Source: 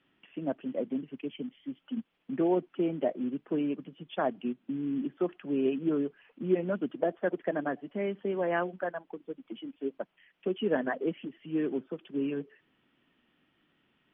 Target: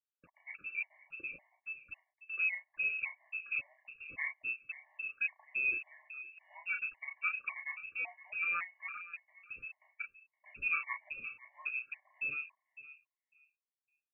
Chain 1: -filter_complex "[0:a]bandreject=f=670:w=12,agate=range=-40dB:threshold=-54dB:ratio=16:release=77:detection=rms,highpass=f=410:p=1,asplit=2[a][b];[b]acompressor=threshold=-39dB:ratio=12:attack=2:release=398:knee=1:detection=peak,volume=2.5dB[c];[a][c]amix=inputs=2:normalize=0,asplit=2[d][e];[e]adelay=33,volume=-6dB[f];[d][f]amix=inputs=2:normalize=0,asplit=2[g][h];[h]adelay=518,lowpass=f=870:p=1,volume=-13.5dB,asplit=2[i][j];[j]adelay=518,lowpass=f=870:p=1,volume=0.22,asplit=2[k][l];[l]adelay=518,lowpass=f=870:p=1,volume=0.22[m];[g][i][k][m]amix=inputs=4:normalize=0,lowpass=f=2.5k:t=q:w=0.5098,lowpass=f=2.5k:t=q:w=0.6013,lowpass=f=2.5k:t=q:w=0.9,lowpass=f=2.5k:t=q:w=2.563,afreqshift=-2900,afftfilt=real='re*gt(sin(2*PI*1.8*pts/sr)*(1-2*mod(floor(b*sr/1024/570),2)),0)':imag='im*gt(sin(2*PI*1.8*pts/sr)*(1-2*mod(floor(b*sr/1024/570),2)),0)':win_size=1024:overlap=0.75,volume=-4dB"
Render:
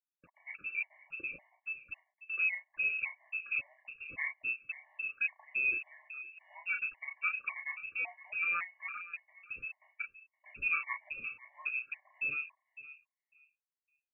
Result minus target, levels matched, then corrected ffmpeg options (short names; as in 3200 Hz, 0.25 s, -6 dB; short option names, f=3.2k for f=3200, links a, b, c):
compressor: peak gain reduction -10 dB
-filter_complex "[0:a]bandreject=f=670:w=12,agate=range=-40dB:threshold=-54dB:ratio=16:release=77:detection=rms,highpass=f=410:p=1,asplit=2[a][b];[b]acompressor=threshold=-50dB:ratio=12:attack=2:release=398:knee=1:detection=peak,volume=2.5dB[c];[a][c]amix=inputs=2:normalize=0,asplit=2[d][e];[e]adelay=33,volume=-6dB[f];[d][f]amix=inputs=2:normalize=0,asplit=2[g][h];[h]adelay=518,lowpass=f=870:p=1,volume=-13.5dB,asplit=2[i][j];[j]adelay=518,lowpass=f=870:p=1,volume=0.22,asplit=2[k][l];[l]adelay=518,lowpass=f=870:p=1,volume=0.22[m];[g][i][k][m]amix=inputs=4:normalize=0,lowpass=f=2.5k:t=q:w=0.5098,lowpass=f=2.5k:t=q:w=0.6013,lowpass=f=2.5k:t=q:w=0.9,lowpass=f=2.5k:t=q:w=2.563,afreqshift=-2900,afftfilt=real='re*gt(sin(2*PI*1.8*pts/sr)*(1-2*mod(floor(b*sr/1024/570),2)),0)':imag='im*gt(sin(2*PI*1.8*pts/sr)*(1-2*mod(floor(b*sr/1024/570),2)),0)':win_size=1024:overlap=0.75,volume=-4dB"